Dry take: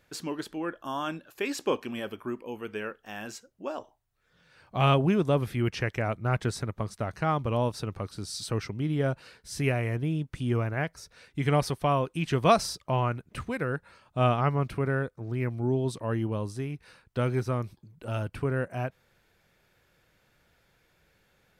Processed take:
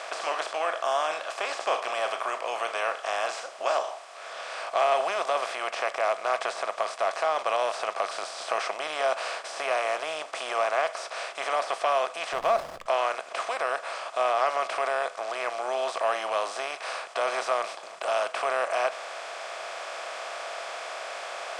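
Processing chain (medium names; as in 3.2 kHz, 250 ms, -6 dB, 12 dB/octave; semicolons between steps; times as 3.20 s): spectral levelling over time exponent 0.4; de-esser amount 80%; Chebyshev band-pass 620–8600 Hz, order 3; in parallel at +2 dB: gain riding within 4 dB 2 s; 12.33–12.86 s: on the sum: hysteresis with a dead band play -23 dBFS; reverberation RT60 0.30 s, pre-delay 6 ms, DRR 13.5 dB; trim -7.5 dB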